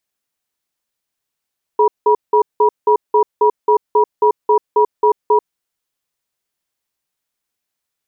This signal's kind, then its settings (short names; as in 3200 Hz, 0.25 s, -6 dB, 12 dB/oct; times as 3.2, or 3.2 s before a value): cadence 424 Hz, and 963 Hz, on 0.09 s, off 0.18 s, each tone -11 dBFS 3.71 s